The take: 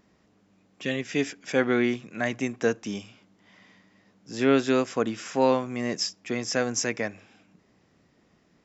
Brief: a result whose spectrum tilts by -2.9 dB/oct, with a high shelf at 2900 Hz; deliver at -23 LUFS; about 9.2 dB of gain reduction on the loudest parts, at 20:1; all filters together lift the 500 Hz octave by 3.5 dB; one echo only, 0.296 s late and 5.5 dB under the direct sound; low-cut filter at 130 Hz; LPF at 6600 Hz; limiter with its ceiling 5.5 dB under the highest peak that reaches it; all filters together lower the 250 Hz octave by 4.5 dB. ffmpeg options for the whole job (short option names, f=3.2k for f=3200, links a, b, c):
-af "highpass=130,lowpass=6.6k,equalizer=f=250:t=o:g=-7,equalizer=f=500:t=o:g=6,highshelf=f=2.9k:g=3.5,acompressor=threshold=-23dB:ratio=20,alimiter=limit=-20dB:level=0:latency=1,aecho=1:1:296:0.531,volume=8.5dB"